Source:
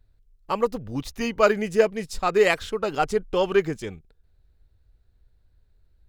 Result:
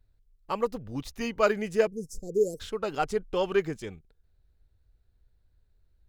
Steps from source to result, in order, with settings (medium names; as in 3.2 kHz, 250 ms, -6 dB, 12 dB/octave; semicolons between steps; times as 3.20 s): 1.87–2.60 s: Chebyshev band-stop 490–5800 Hz, order 4; trim -5 dB